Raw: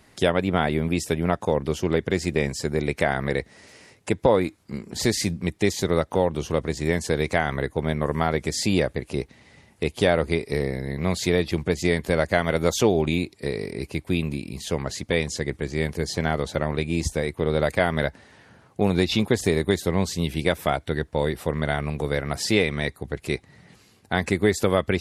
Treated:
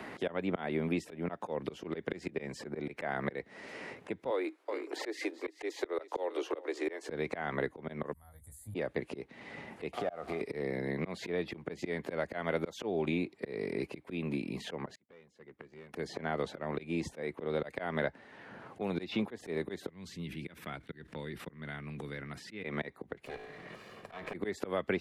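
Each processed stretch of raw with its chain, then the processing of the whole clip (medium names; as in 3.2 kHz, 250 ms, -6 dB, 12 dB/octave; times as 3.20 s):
4.30–7.08 s: steep high-pass 300 Hz 72 dB/octave + delay 380 ms -18.5 dB
8.13–8.75 s: inverse Chebyshev band-stop 160–5700 Hz + doubling 19 ms -4 dB
9.93–10.41 s: one-bit delta coder 64 kbps, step -35 dBFS + compression, threshold -31 dBFS + small resonant body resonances 710/1200 Hz, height 15 dB, ringing for 25 ms
14.95–15.94 s: band-stop 300 Hz, Q 9.4 + hard clipper -19 dBFS + inverted gate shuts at -25 dBFS, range -40 dB
19.89–22.64 s: gate -37 dBFS, range -20 dB + amplifier tone stack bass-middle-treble 6-0-2 + decay stretcher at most 23 dB/s
23.25–24.34 s: comb filter that takes the minimum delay 1.7 ms + feedback comb 54 Hz, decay 0.83 s, mix 50% + compression 8:1, threshold -37 dBFS
whole clip: three-band isolator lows -17 dB, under 170 Hz, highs -15 dB, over 3.2 kHz; slow attack 274 ms; three bands compressed up and down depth 70%; trim -2.5 dB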